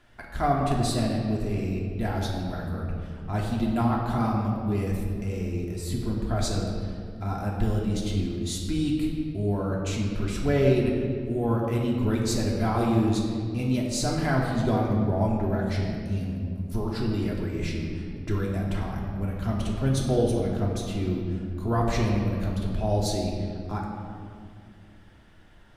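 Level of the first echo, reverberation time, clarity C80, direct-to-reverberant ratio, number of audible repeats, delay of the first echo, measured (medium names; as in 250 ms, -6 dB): no echo, 2.3 s, 3.0 dB, -2.5 dB, no echo, no echo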